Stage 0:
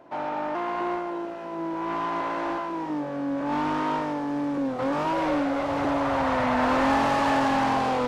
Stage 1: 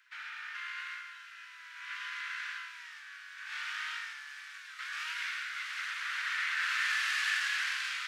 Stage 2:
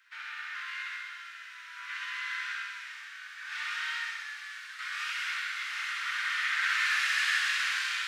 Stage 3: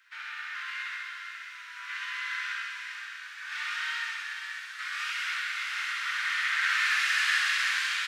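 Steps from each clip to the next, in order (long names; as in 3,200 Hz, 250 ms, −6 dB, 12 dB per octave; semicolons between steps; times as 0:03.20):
Butterworth high-pass 1,500 Hz 48 dB per octave; level +1.5 dB
feedback echo with a high-pass in the loop 65 ms, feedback 78%, high-pass 840 Hz, level −6 dB; on a send at −1.5 dB: convolution reverb RT60 0.45 s, pre-delay 3 ms
single-tap delay 486 ms −9 dB; level +1.5 dB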